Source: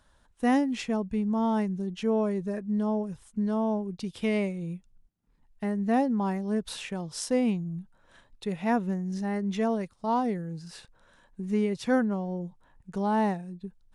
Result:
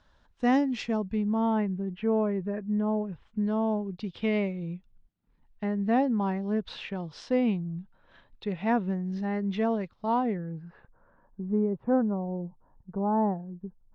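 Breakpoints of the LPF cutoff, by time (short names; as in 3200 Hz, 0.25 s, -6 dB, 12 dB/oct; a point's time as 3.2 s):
LPF 24 dB/oct
0.92 s 5700 Hz
1.77 s 2500 Hz
2.88 s 2500 Hz
3.58 s 4100 Hz
10.07 s 4100 Hz
10.69 s 1700 Hz
11.52 s 1100 Hz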